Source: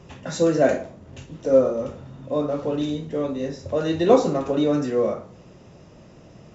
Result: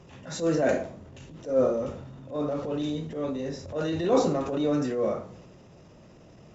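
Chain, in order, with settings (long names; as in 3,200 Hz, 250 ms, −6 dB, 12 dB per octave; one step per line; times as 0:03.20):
transient designer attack −10 dB, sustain +4 dB
level −4 dB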